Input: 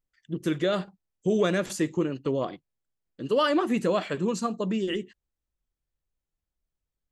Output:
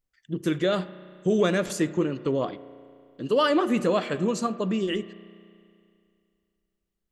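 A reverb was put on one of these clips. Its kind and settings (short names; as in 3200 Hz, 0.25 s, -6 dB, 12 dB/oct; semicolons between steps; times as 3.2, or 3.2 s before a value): spring tank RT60 2.4 s, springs 33 ms, chirp 70 ms, DRR 15 dB; gain +1.5 dB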